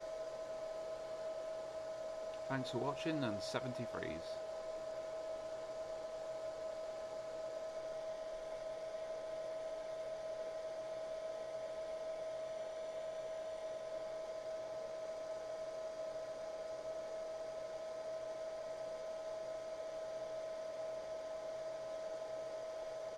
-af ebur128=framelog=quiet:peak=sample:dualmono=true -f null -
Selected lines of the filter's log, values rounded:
Integrated loudness:
  I:         -41.7 LUFS
  Threshold: -51.7 LUFS
Loudness range:
  LRA:         3.3 LU
  Threshold: -61.6 LUFS
  LRA low:   -42.4 LUFS
  LRA high:  -39.1 LUFS
Sample peak:
  Peak:      -24.2 dBFS